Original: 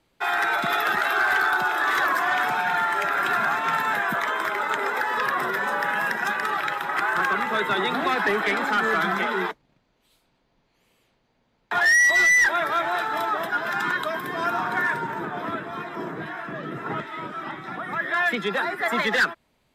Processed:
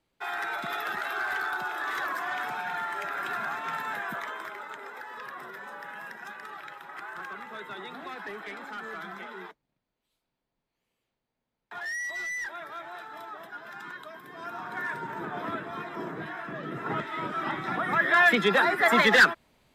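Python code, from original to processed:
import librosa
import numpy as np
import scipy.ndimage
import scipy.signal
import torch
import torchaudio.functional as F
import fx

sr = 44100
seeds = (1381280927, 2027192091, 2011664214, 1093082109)

y = fx.gain(x, sr, db=fx.line((4.15, -9.5), (4.79, -16.5), (14.23, -16.5), (15.34, -4.0), (16.59, -4.0), (17.59, 3.0)))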